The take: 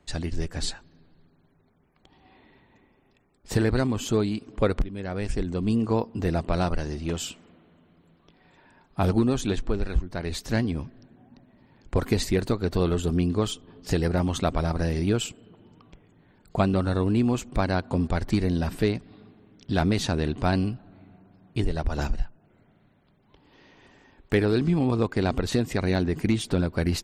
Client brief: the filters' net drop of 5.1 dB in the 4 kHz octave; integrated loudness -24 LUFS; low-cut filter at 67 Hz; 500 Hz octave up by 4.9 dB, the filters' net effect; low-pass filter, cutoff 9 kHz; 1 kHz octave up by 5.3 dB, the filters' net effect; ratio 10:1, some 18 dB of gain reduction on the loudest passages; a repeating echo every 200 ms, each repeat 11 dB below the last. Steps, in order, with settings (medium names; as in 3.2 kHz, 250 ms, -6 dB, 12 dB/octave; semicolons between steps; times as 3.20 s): high-pass 67 Hz; low-pass 9 kHz; peaking EQ 500 Hz +5 dB; peaking EQ 1 kHz +5.5 dB; peaking EQ 4 kHz -6.5 dB; compression 10:1, threshold -33 dBFS; feedback delay 200 ms, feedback 28%, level -11 dB; trim +15 dB